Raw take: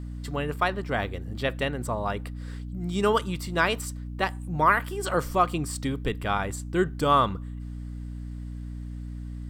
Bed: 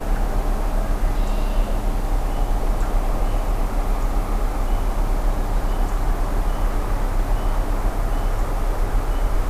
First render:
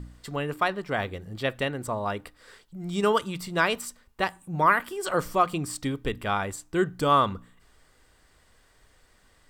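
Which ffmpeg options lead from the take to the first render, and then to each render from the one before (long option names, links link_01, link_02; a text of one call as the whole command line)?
ffmpeg -i in.wav -af "bandreject=frequency=60:width_type=h:width=4,bandreject=frequency=120:width_type=h:width=4,bandreject=frequency=180:width_type=h:width=4,bandreject=frequency=240:width_type=h:width=4,bandreject=frequency=300:width_type=h:width=4" out.wav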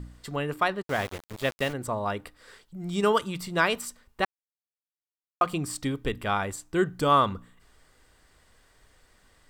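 ffmpeg -i in.wav -filter_complex "[0:a]asplit=3[link_01][link_02][link_03];[link_01]afade=type=out:start_time=0.81:duration=0.02[link_04];[link_02]aeval=exprs='val(0)*gte(abs(val(0)),0.02)':channel_layout=same,afade=type=in:start_time=0.81:duration=0.02,afade=type=out:start_time=1.72:duration=0.02[link_05];[link_03]afade=type=in:start_time=1.72:duration=0.02[link_06];[link_04][link_05][link_06]amix=inputs=3:normalize=0,asplit=3[link_07][link_08][link_09];[link_07]atrim=end=4.25,asetpts=PTS-STARTPTS,afade=type=out:start_time=4.246:duration=0.004:curve=hsin[link_10];[link_08]atrim=start=4.25:end=5.41,asetpts=PTS-STARTPTS,volume=0[link_11];[link_09]atrim=start=5.41,asetpts=PTS-STARTPTS,afade=type=in:duration=0.004:curve=hsin[link_12];[link_10][link_11][link_12]concat=n=3:v=0:a=1" out.wav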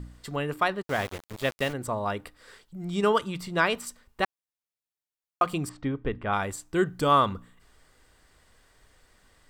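ffmpeg -i in.wav -filter_complex "[0:a]asettb=1/sr,asplit=3[link_01][link_02][link_03];[link_01]atrim=end=2.854[link_04];[link_02]atrim=start=2.85:end=3.87,asetpts=PTS-STARTPTS,afade=type=in:duration=0.004:curve=qsin,afade=type=out:start_time=1.016:duration=0.004:curve=qsin,highshelf=frequency=6700:gain=-6.5[link_05];[link_03]atrim=start=3.866[link_06];[link_04][link_05]acrossfade=duration=0.004:curve1=hsin:curve2=qsin[link_07];[link_07][link_06]acrossfade=duration=0.004:curve1=qsin:curve2=hsin,asettb=1/sr,asplit=3[link_08][link_09][link_10];[link_08]atrim=end=5.694[link_11];[link_09]atrim=start=5.69:end=6.33,asetpts=PTS-STARTPTS,afade=type=in:duration=0.004:curve=qsin,afade=type=out:start_time=0.636:duration=0.004:curve=qsin,lowpass=1900[link_12];[link_10]atrim=start=6.326[link_13];[link_11][link_12]acrossfade=duration=0.004:curve1=hsin:curve2=qsin[link_14];[link_14][link_13]acrossfade=duration=0.004:curve1=qsin:curve2=hsin" out.wav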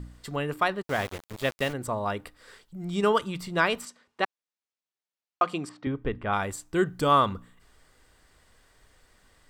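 ffmpeg -i in.wav -filter_complex "[0:a]asettb=1/sr,asplit=3[link_01][link_02][link_03];[link_01]atrim=end=3.854[link_04];[link_02]atrim=start=3.85:end=5.87,asetpts=PTS-STARTPTS,afade=type=in:duration=0.004:curve=qsin,afade=type=out:start_time=2.016:duration=0.004:curve=qsin,highpass=220,lowpass=6300[link_05];[link_03]atrim=start=5.866[link_06];[link_04][link_05]acrossfade=duration=0.004:curve1=hsin:curve2=qsin[link_07];[link_07][link_06]acrossfade=duration=0.004:curve1=qsin:curve2=hsin" out.wav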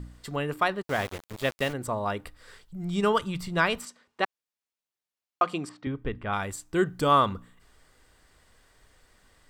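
ffmpeg -i in.wav -filter_complex "[0:a]asplit=3[link_01][link_02][link_03];[link_01]afade=type=out:start_time=2.23:duration=0.02[link_04];[link_02]asubboost=boost=3:cutoff=160,afade=type=in:start_time=2.23:duration=0.02,afade=type=out:start_time=3.78:duration=0.02[link_05];[link_03]afade=type=in:start_time=3.78:duration=0.02[link_06];[link_04][link_05][link_06]amix=inputs=3:normalize=0,asettb=1/sr,asplit=3[link_07][link_08][link_09];[link_07]atrim=end=5.764[link_10];[link_08]atrim=start=5.76:end=6.69,asetpts=PTS-STARTPTS,afade=type=in:duration=0.004:curve=qsin,afade=type=out:start_time=0.926:duration=0.004:curve=qsin,equalizer=frequency=570:width_type=o:width=2.8:gain=-3.5[link_11];[link_09]atrim=start=6.686[link_12];[link_10][link_11]acrossfade=duration=0.004:curve1=hsin:curve2=qsin[link_13];[link_13][link_12]acrossfade=duration=0.004:curve1=qsin:curve2=hsin" out.wav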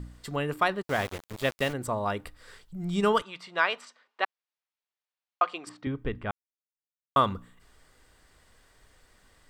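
ffmpeg -i in.wav -filter_complex "[0:a]asettb=1/sr,asplit=3[link_01][link_02][link_03];[link_01]atrim=end=3.224[link_04];[link_02]atrim=start=3.22:end=5.67,asetpts=PTS-STARTPTS,afade=type=in:duration=0.004:curve=qsin,afade=type=out:start_time=2.446:duration=0.004:curve=qsin,highpass=590,lowpass=4200[link_05];[link_03]atrim=start=5.666[link_06];[link_04][link_05]acrossfade=duration=0.004:curve1=hsin:curve2=qsin[link_07];[link_07][link_06]acrossfade=duration=0.004:curve1=qsin:curve2=hsin,asplit=3[link_08][link_09][link_10];[link_08]atrim=end=6.31,asetpts=PTS-STARTPTS,afade=type=out:start_time=6.306:duration=0.004:curve=hsin[link_11];[link_09]atrim=start=6.31:end=7.16,asetpts=PTS-STARTPTS,volume=0[link_12];[link_10]atrim=start=7.16,asetpts=PTS-STARTPTS,afade=type=in:duration=0.004:curve=hsin[link_13];[link_11][link_12][link_13]concat=n=3:v=0:a=1" out.wav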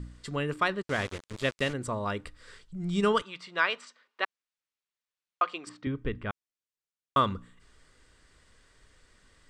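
ffmpeg -i in.wav -af "lowpass=frequency=9100:width=0.5412,lowpass=frequency=9100:width=1.3066,equalizer=frequency=760:width=2.4:gain=-7.5" out.wav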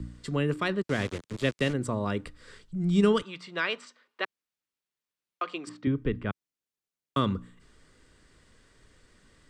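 ffmpeg -i in.wav -filter_complex "[0:a]acrossover=split=110|420|1600[link_01][link_02][link_03][link_04];[link_02]acontrast=71[link_05];[link_03]alimiter=level_in=3.5dB:limit=-24dB:level=0:latency=1:release=86,volume=-3.5dB[link_06];[link_01][link_05][link_06][link_04]amix=inputs=4:normalize=0" out.wav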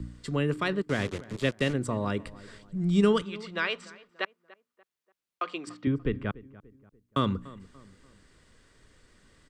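ffmpeg -i in.wav -filter_complex "[0:a]asplit=2[link_01][link_02];[link_02]adelay=291,lowpass=frequency=1800:poles=1,volume=-19dB,asplit=2[link_03][link_04];[link_04]adelay=291,lowpass=frequency=1800:poles=1,volume=0.42,asplit=2[link_05][link_06];[link_06]adelay=291,lowpass=frequency=1800:poles=1,volume=0.42[link_07];[link_01][link_03][link_05][link_07]amix=inputs=4:normalize=0" out.wav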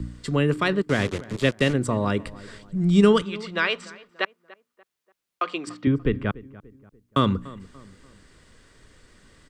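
ffmpeg -i in.wav -af "volume=6dB" out.wav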